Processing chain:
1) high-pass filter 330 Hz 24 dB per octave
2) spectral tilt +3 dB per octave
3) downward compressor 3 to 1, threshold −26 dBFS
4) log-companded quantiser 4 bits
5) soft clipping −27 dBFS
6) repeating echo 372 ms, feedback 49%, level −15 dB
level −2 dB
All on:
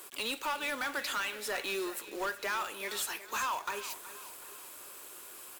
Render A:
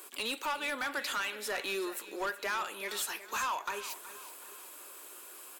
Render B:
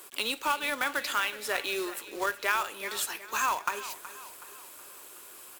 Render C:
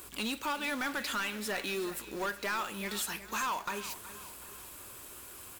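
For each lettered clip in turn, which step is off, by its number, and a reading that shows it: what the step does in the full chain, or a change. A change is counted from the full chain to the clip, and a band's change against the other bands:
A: 4, distortion level −13 dB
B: 5, distortion level −8 dB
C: 1, 125 Hz band +11.5 dB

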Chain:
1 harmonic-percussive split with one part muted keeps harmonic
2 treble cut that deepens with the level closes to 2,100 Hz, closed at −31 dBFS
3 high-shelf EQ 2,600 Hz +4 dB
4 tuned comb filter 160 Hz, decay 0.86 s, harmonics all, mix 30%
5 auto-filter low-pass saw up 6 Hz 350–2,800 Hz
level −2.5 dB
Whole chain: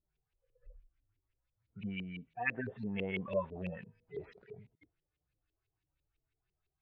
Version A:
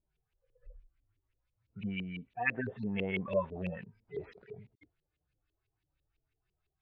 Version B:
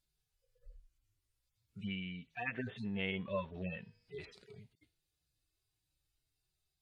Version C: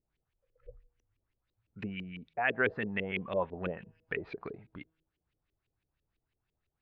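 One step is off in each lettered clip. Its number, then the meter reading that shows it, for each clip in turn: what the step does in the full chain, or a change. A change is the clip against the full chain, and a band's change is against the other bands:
4, change in integrated loudness +3.0 LU
5, 4 kHz band +8.0 dB
1, 125 Hz band −5.0 dB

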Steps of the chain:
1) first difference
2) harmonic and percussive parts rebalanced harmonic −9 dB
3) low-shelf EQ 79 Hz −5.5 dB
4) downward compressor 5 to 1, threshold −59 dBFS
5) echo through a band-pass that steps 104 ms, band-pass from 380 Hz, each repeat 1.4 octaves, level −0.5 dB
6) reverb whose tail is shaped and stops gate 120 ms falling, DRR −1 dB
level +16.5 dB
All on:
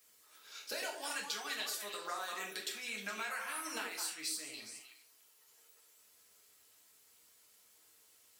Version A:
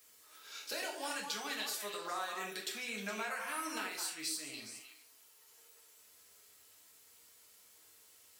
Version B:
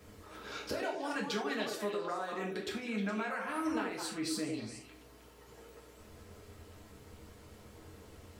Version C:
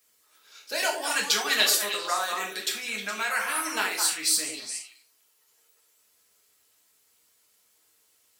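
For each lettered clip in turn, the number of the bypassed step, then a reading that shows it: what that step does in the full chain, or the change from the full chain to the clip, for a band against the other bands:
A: 2, 250 Hz band +5.0 dB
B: 1, 250 Hz band +16.5 dB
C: 4, average gain reduction 11.5 dB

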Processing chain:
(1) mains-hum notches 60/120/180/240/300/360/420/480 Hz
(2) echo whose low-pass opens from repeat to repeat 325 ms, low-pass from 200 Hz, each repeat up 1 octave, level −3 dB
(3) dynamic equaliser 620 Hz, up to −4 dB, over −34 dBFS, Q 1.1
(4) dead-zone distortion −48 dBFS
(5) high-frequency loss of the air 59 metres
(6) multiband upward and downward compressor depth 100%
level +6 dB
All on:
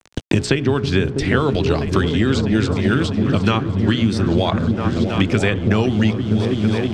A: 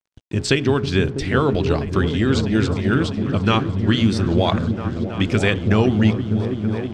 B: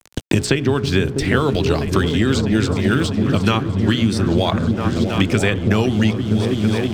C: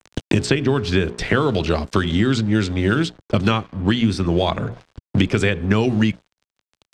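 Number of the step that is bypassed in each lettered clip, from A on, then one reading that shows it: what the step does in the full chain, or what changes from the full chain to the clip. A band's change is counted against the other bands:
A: 6, change in momentary loudness spread +3 LU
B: 5, 8 kHz band +4.0 dB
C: 2, change in momentary loudness spread +2 LU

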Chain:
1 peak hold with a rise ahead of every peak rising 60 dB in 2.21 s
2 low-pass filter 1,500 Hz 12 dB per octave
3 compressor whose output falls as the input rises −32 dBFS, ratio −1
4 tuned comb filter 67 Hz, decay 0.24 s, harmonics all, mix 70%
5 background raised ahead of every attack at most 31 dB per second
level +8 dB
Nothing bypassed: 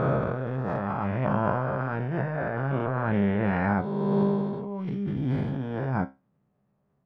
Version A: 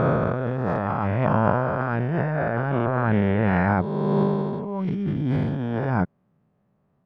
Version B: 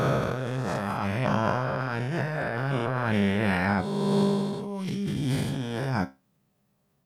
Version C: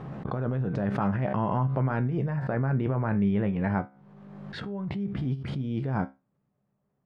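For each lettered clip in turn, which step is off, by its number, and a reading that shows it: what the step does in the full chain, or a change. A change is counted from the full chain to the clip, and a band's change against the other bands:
4, change in crest factor +2.0 dB
2, 2 kHz band +4.0 dB
1, 125 Hz band +4.5 dB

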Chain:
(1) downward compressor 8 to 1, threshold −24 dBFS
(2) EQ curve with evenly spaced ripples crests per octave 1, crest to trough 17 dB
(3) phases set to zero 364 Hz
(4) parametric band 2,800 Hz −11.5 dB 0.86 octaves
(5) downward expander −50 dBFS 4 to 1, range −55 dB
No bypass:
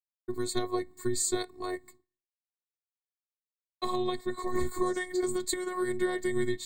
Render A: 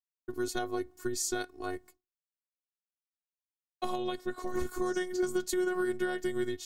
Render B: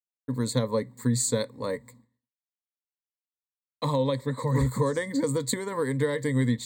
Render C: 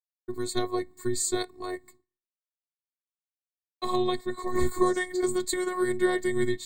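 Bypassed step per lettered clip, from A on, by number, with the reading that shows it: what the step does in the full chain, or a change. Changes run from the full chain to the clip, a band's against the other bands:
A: 2, 125 Hz band −3.5 dB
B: 3, 125 Hz band +14.5 dB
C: 1, average gain reduction 2.5 dB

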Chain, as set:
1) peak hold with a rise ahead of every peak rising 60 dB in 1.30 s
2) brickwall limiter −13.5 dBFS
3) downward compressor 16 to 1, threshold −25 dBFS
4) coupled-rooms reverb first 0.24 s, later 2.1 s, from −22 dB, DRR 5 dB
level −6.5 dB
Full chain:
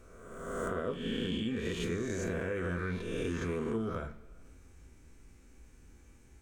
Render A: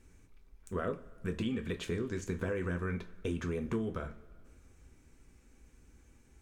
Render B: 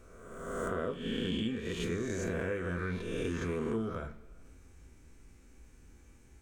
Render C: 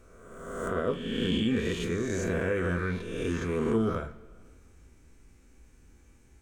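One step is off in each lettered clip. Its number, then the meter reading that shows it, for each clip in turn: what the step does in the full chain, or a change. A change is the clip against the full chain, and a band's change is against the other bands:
1, 4 kHz band −4.0 dB
2, change in momentary loudness spread +1 LU
3, average gain reduction 2.5 dB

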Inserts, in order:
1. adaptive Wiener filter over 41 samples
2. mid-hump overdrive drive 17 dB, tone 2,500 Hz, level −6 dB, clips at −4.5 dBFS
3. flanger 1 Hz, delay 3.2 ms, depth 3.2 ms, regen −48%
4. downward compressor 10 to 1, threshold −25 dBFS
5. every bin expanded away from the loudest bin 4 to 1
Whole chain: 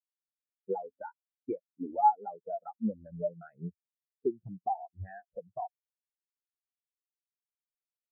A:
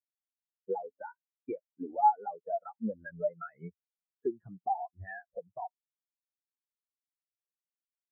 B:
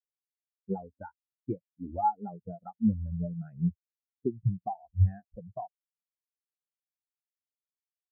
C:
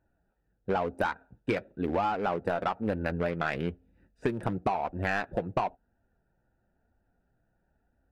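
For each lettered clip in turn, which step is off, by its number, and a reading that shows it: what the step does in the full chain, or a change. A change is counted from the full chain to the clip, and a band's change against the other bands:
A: 1, 125 Hz band −5.0 dB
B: 2, change in crest factor −2.0 dB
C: 5, 1 kHz band −6.0 dB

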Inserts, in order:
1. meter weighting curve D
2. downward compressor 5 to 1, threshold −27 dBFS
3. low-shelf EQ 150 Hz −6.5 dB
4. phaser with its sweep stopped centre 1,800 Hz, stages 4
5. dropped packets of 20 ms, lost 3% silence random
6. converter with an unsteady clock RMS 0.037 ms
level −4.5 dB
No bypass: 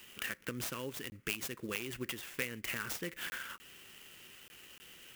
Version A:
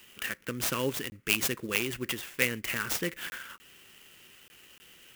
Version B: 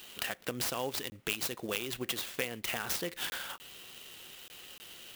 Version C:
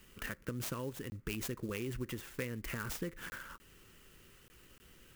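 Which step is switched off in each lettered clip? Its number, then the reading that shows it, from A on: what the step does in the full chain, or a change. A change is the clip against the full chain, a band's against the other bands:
2, average gain reduction 4.0 dB
4, 125 Hz band −5.0 dB
1, 125 Hz band +8.5 dB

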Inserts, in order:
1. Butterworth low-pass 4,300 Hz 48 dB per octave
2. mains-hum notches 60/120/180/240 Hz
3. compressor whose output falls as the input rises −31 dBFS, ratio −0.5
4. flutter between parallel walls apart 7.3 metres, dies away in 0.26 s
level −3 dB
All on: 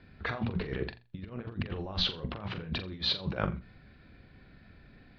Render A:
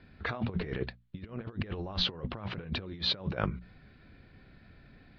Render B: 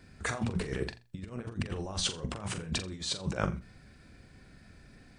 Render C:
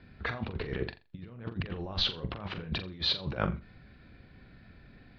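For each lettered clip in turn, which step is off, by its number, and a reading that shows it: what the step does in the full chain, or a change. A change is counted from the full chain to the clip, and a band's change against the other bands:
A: 4, echo-to-direct ratio −9.5 dB to none audible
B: 1, 4 kHz band −4.0 dB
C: 2, 250 Hz band −2.0 dB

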